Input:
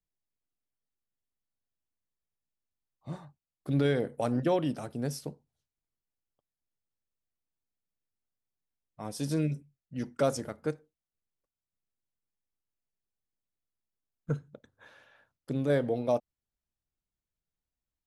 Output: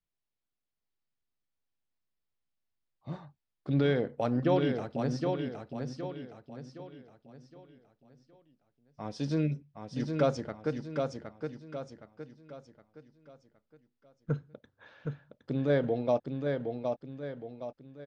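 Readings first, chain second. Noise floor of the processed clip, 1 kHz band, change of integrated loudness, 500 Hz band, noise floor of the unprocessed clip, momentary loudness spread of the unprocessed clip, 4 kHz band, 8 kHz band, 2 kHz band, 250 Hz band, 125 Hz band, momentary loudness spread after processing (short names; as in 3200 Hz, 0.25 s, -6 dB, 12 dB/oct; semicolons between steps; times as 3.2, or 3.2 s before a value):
under -85 dBFS, +1.5 dB, -1.5 dB, +1.5 dB, under -85 dBFS, 16 LU, +0.5 dB, -9.5 dB, +1.5 dB, +1.5 dB, +1.5 dB, 19 LU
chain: LPF 5100 Hz 24 dB/oct; on a send: feedback echo 0.766 s, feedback 41%, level -5 dB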